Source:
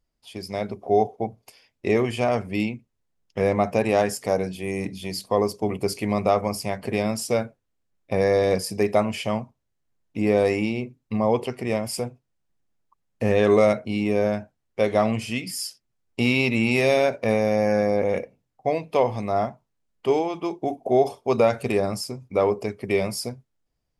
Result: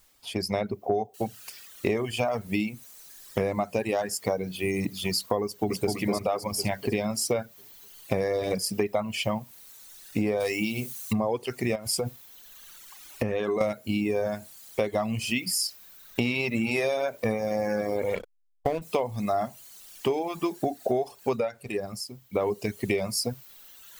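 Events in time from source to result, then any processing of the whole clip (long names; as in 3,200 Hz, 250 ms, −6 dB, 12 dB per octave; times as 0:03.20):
0:01.14: noise floor change −69 dB −51 dB
0:05.45–0:05.94: delay throw 250 ms, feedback 55%, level −0.5 dB
0:10.40–0:11.13: high-shelf EQ 2,700 Hz +10 dB
0:11.75–0:13.61: downward compressor, threshold −25 dBFS
0:18.15–0:18.82: slack as between gear wheels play −26 dBFS
0:21.31–0:22.52: duck −10.5 dB, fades 0.21 s
whole clip: reverb reduction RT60 1.9 s; downward compressor 10 to 1, threshold −30 dBFS; level +7 dB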